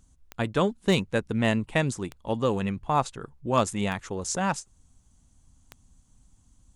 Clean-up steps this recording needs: clip repair -11.5 dBFS; de-click

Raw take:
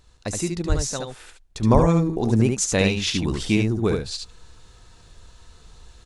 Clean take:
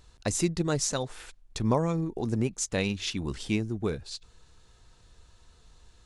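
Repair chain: 0.68–0.8 HPF 140 Hz 24 dB/oct; 1.73–1.85 HPF 140 Hz 24 dB/oct; inverse comb 72 ms -4.5 dB; gain 0 dB, from 1.62 s -7.5 dB

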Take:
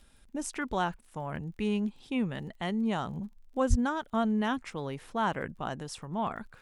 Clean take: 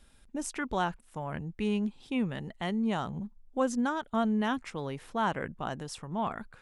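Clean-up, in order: de-click; 3.69–3.81 HPF 140 Hz 24 dB/oct

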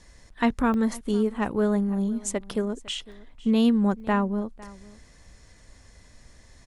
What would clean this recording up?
interpolate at 0.74/3.12/4, 1.2 ms; inverse comb 0.504 s -21 dB

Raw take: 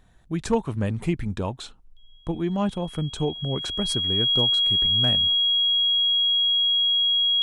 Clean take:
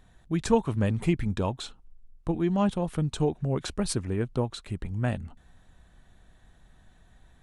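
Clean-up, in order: clip repair -11.5 dBFS; notch 3300 Hz, Q 30

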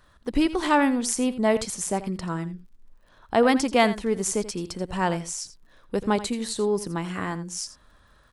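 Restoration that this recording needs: de-click; inverse comb 84 ms -14.5 dB

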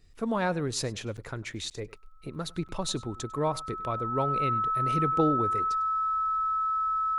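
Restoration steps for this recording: de-click; notch 1300 Hz, Q 30; interpolate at 1.17/1.7/2.68, 8.2 ms; inverse comb 0.1 s -22 dB

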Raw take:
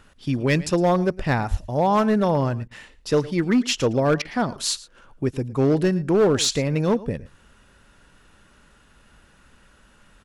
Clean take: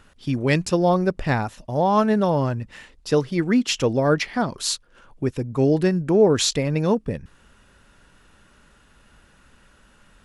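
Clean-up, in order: clip repair -13 dBFS; 1.5–1.62 HPF 140 Hz 24 dB/oct; interpolate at 2.68/4.22, 29 ms; inverse comb 0.111 s -19.5 dB

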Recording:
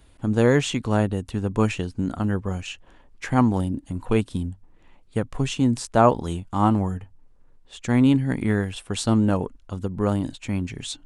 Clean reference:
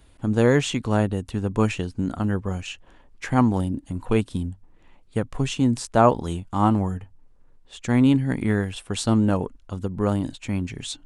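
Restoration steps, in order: none needed

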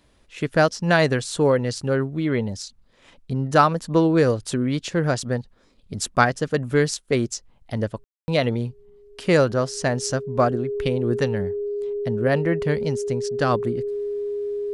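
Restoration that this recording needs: notch 410 Hz, Q 30; room tone fill 8.04–8.28

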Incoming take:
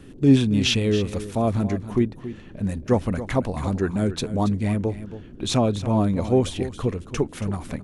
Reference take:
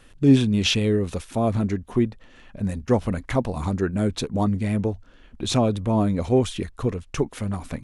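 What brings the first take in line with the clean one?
noise print and reduce 7 dB; inverse comb 0.277 s -13 dB

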